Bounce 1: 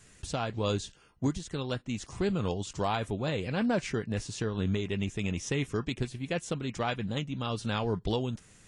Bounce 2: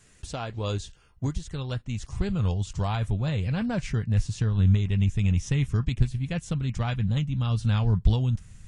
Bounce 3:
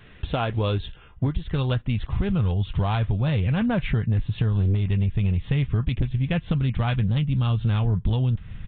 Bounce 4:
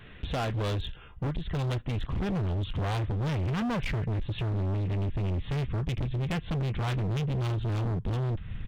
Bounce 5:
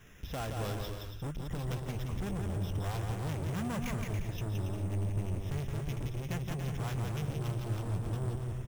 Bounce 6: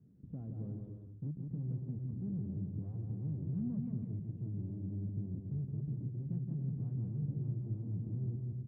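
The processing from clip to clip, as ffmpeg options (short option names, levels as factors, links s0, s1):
-af "asubboost=boost=11.5:cutoff=110,volume=0.891"
-af "aresample=8000,aeval=exprs='0.422*sin(PI/2*2.24*val(0)/0.422)':c=same,aresample=44100,acompressor=threshold=0.1:ratio=6"
-af "volume=23.7,asoftclip=hard,volume=0.0422"
-af "aecho=1:1:170|280.5|352.3|399|429.4:0.631|0.398|0.251|0.158|0.1,acrusher=samples=5:mix=1:aa=0.000001,volume=0.422"
-af "asuperpass=centerf=180:order=4:qfactor=1.1"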